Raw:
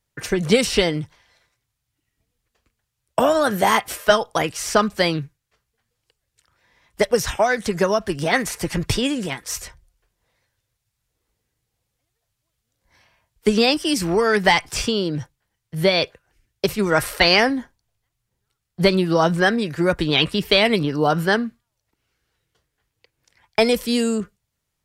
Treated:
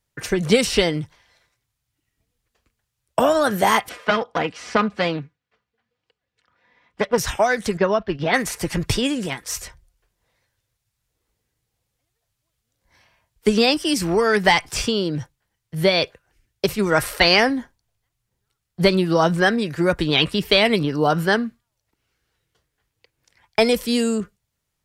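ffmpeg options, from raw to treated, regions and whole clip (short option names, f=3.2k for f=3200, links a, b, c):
-filter_complex "[0:a]asettb=1/sr,asplit=3[a][b][c];[a]atrim=end=3.894[d];[b]atrim=start=3.89:end=7.18,asetpts=PTS-STARTPTS,afade=t=in:d=0.004:c=qsin,afade=t=out:st=3.286:d=0.004:c=qsin,aecho=1:1:4.1:0.4,atrim=end_sample=145089,aeval=exprs='clip(val(0),-1,0.0668)':c=same,highpass=110,lowpass=3.2k[e];[c]atrim=start=7.176[f];[d][e]acrossfade=d=0.004:c1=hsin:c2=qsin[g];[g][f]acrossfade=d=0.004:c1=qsin:c2=hsin,asettb=1/sr,asplit=3[h][i][j];[h]atrim=end=7.774[k];[i]atrim=start=7.77:end=8.34,asetpts=PTS-STARTPTS,afade=t=in:d=0.004:c=qsin,afade=t=out:st=0.566:d=0.004:c=qsin,lowpass=f=4.1k:w=0.5412,lowpass=f=4.1k:w=1.3066,agate=range=-8dB:threshold=-31dB:ratio=16:release=100:detection=peak[l];[j]atrim=start=8.336[m];[k][l]acrossfade=d=0.004:c1=hsin:c2=qsin[n];[n][m]acrossfade=d=0.004:c1=qsin:c2=hsin"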